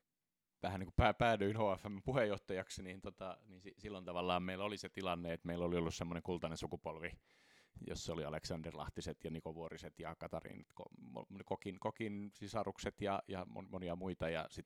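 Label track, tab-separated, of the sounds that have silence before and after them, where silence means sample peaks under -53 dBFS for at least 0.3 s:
0.620000	7.140000	sound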